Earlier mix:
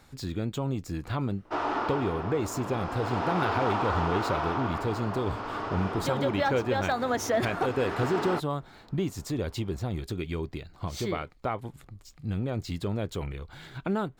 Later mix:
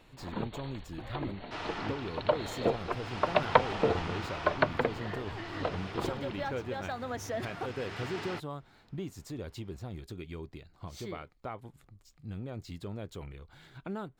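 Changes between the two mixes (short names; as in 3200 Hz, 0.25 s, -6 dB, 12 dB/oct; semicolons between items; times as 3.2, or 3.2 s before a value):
speech -9.5 dB; first sound: unmuted; second sound: add band shelf 570 Hz -12 dB 3 oct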